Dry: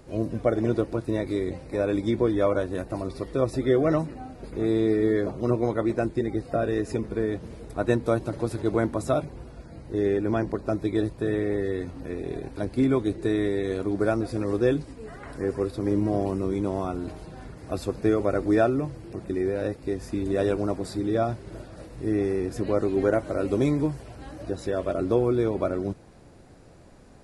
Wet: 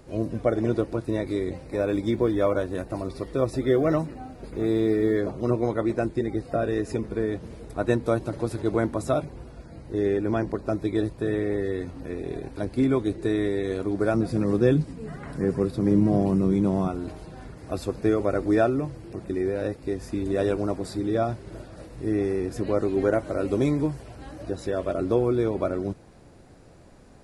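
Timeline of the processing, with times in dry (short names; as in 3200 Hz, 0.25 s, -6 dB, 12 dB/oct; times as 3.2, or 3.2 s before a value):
1.54–5.2 short-mantissa float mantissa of 6-bit
14.14–16.88 bell 170 Hz +13.5 dB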